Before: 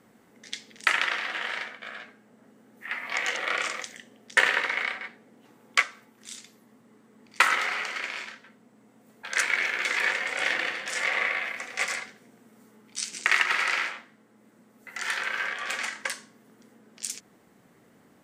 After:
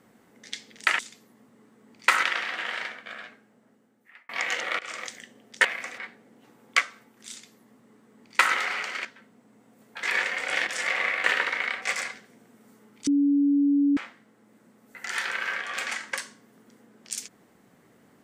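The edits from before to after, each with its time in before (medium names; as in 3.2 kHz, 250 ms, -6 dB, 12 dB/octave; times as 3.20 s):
1.90–3.05 s: fade out
3.55–3.82 s: fade in, from -20.5 dB
4.41–4.99 s: swap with 11.41–11.74 s
6.31–7.55 s: copy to 0.99 s
8.06–8.33 s: delete
9.31–9.92 s: delete
10.56–10.84 s: delete
12.99–13.89 s: bleep 284 Hz -18 dBFS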